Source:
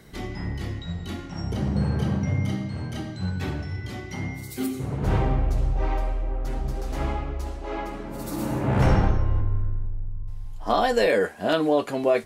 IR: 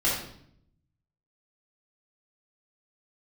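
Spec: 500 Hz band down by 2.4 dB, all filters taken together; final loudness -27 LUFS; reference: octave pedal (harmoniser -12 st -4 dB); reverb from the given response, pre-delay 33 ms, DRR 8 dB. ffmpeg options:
-filter_complex "[0:a]equalizer=f=500:t=o:g=-3,asplit=2[a][b];[1:a]atrim=start_sample=2205,adelay=33[c];[b][c]afir=irnorm=-1:irlink=0,volume=-19.5dB[d];[a][d]amix=inputs=2:normalize=0,asplit=2[e][f];[f]asetrate=22050,aresample=44100,atempo=2,volume=-4dB[g];[e][g]amix=inputs=2:normalize=0,volume=-1.5dB"

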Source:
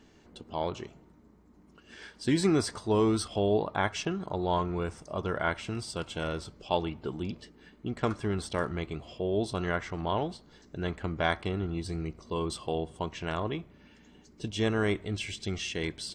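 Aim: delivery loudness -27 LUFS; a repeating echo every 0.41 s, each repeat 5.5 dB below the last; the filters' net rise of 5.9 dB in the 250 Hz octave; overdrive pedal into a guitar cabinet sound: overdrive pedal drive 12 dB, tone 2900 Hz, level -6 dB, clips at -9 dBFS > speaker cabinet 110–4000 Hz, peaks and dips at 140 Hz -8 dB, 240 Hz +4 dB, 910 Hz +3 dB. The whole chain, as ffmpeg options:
-filter_complex "[0:a]equalizer=f=250:t=o:g=7,aecho=1:1:410|820|1230|1640|2050|2460|2870:0.531|0.281|0.149|0.079|0.0419|0.0222|0.0118,asplit=2[a][b];[b]highpass=f=720:p=1,volume=12dB,asoftclip=type=tanh:threshold=-9dB[c];[a][c]amix=inputs=2:normalize=0,lowpass=f=2.9k:p=1,volume=-6dB,highpass=110,equalizer=f=140:t=q:w=4:g=-8,equalizer=f=240:t=q:w=4:g=4,equalizer=f=910:t=q:w=4:g=3,lowpass=f=4k:w=0.5412,lowpass=f=4k:w=1.3066,volume=-0.5dB"

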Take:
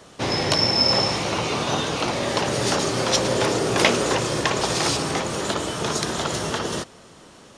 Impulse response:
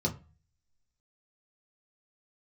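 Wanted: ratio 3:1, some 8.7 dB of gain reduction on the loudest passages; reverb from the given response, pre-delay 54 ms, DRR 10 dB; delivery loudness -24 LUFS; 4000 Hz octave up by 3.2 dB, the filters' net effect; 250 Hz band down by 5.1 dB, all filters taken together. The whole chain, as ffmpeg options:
-filter_complex "[0:a]equalizer=f=250:t=o:g=-7.5,equalizer=f=4k:t=o:g=4.5,acompressor=threshold=-25dB:ratio=3,asplit=2[a][b];[1:a]atrim=start_sample=2205,adelay=54[c];[b][c]afir=irnorm=-1:irlink=0,volume=-16dB[d];[a][d]amix=inputs=2:normalize=0,volume=1dB"

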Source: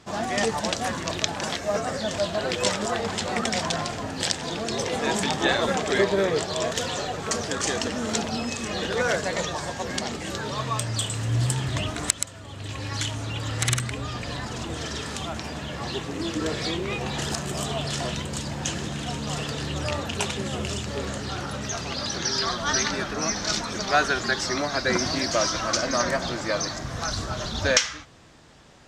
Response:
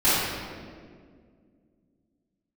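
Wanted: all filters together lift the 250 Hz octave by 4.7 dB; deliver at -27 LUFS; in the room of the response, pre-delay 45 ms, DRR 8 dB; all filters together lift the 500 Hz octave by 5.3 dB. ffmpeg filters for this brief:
-filter_complex "[0:a]equalizer=f=250:t=o:g=4.5,equalizer=f=500:t=o:g=5.5,asplit=2[a][b];[1:a]atrim=start_sample=2205,adelay=45[c];[b][c]afir=irnorm=-1:irlink=0,volume=-26.5dB[d];[a][d]amix=inputs=2:normalize=0,volume=-3.5dB"

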